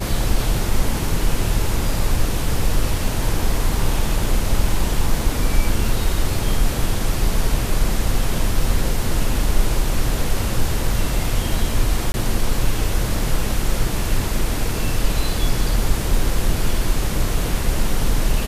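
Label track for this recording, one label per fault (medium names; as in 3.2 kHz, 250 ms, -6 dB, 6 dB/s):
12.120000	12.140000	dropout 21 ms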